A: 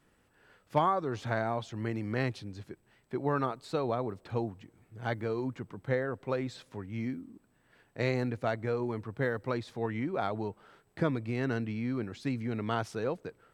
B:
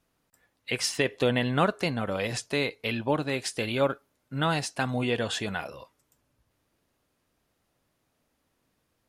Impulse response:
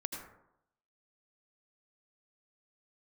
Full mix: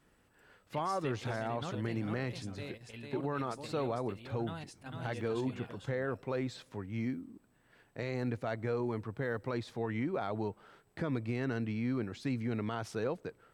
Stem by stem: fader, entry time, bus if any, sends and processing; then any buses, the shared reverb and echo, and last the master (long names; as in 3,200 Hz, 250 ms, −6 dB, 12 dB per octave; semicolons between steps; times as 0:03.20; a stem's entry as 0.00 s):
−0.5 dB, 0.00 s, no send, no echo send, no processing
−8.5 dB, 0.05 s, no send, echo send −15 dB, low-shelf EQ 150 Hz +9.5 dB; square-wave tremolo 5.2 Hz, depth 60%, duty 85%; automatic ducking −11 dB, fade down 1.25 s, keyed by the first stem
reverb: not used
echo: single-tap delay 450 ms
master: brickwall limiter −24.5 dBFS, peak gain reduction 9.5 dB